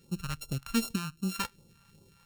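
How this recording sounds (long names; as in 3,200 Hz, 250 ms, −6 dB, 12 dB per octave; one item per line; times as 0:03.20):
a buzz of ramps at a fixed pitch in blocks of 32 samples
phaser sweep stages 2, 2.6 Hz, lowest notch 330–1,700 Hz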